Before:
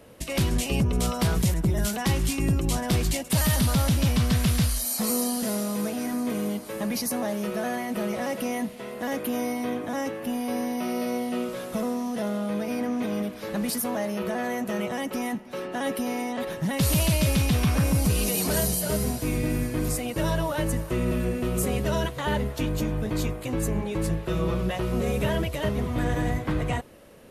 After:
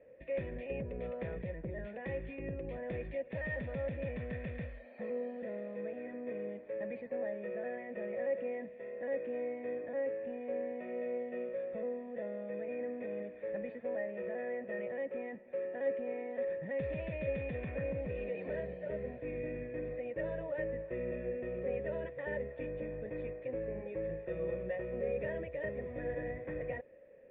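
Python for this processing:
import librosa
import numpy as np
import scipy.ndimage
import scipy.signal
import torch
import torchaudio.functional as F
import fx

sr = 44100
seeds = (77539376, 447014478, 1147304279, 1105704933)

y = fx.formant_cascade(x, sr, vowel='e')
y = fx.notch(y, sr, hz=1200.0, q=19.0)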